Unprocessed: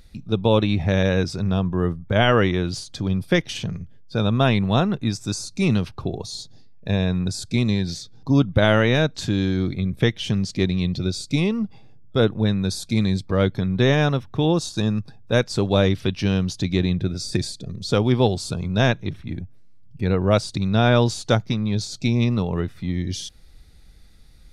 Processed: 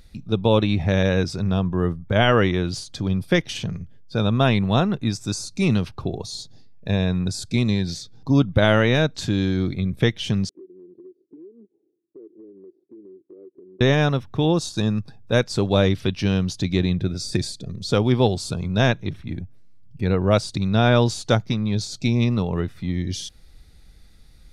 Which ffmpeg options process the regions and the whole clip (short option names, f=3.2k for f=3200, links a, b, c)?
-filter_complex "[0:a]asettb=1/sr,asplit=3[a][b][c];[a]atrim=end=10.494[d];[b]atrim=start=10.49:end=13.81,asetpts=PTS-STARTPTS,afade=t=in:d=0.004:c=qsin,afade=t=out:st=3.316:d=0.004:c=qsin,asuperpass=centerf=360:order=4:qfactor=4.2,acompressor=threshold=-42dB:ratio=5:attack=3.2:release=140:knee=1:detection=peak[e];[c]atrim=start=13.806[f];[d][e]acrossfade=d=0.004:c1=hsin:c2=qsin[g];[g][f]acrossfade=d=0.004:c1=qsin:c2=hsin"